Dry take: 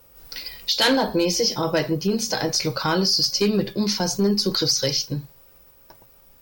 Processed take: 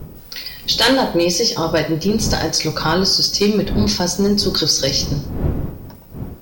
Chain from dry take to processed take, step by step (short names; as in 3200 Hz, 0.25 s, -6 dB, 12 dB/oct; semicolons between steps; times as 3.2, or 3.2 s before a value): wind noise 210 Hz -32 dBFS; non-linear reverb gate 0.29 s falling, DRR 11 dB; gain +4.5 dB